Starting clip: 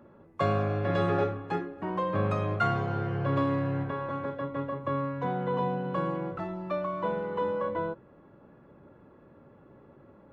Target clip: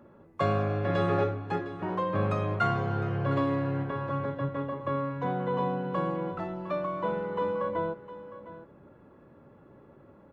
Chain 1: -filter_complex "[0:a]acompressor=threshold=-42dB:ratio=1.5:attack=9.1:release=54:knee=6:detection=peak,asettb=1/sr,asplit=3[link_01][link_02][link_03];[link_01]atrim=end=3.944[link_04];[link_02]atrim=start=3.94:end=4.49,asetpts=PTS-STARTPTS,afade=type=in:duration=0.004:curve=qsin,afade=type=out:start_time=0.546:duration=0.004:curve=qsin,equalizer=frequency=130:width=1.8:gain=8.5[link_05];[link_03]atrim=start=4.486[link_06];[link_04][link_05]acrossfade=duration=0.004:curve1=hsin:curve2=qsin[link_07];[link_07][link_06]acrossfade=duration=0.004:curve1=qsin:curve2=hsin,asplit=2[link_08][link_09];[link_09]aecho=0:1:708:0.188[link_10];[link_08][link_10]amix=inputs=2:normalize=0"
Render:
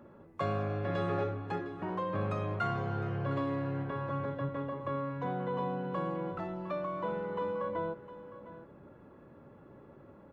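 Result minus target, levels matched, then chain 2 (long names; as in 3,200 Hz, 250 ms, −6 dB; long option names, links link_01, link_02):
downward compressor: peak gain reduction +7 dB
-filter_complex "[0:a]asettb=1/sr,asplit=3[link_01][link_02][link_03];[link_01]atrim=end=3.944[link_04];[link_02]atrim=start=3.94:end=4.49,asetpts=PTS-STARTPTS,afade=type=in:duration=0.004:curve=qsin,afade=type=out:start_time=0.546:duration=0.004:curve=qsin,equalizer=frequency=130:width=1.8:gain=8.5[link_05];[link_03]atrim=start=4.486[link_06];[link_04][link_05]acrossfade=duration=0.004:curve1=hsin:curve2=qsin[link_07];[link_07][link_06]acrossfade=duration=0.004:curve1=qsin:curve2=hsin,asplit=2[link_08][link_09];[link_09]aecho=0:1:708:0.188[link_10];[link_08][link_10]amix=inputs=2:normalize=0"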